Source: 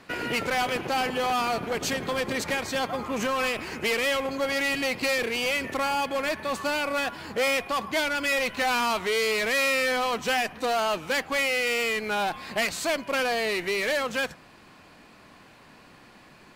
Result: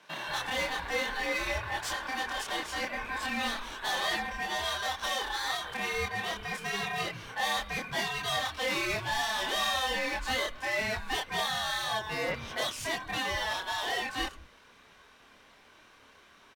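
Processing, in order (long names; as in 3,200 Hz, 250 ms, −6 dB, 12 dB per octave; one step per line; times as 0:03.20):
ring modulation 1,300 Hz
multi-voice chorus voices 4, 0.91 Hz, delay 27 ms, depth 2.7 ms
multiband delay without the direct sound highs, lows 180 ms, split 150 Hz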